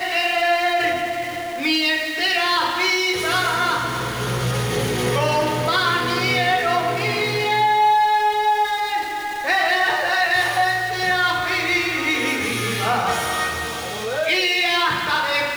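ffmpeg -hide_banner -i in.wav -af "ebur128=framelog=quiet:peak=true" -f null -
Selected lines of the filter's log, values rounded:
Integrated loudness:
  I:         -19.3 LUFS
  Threshold: -29.3 LUFS
Loudness range:
  LRA:         2.0 LU
  Threshold: -39.2 LUFS
  LRA low:   -20.2 LUFS
  LRA high:  -18.2 LUFS
True peak:
  Peak:       -8.6 dBFS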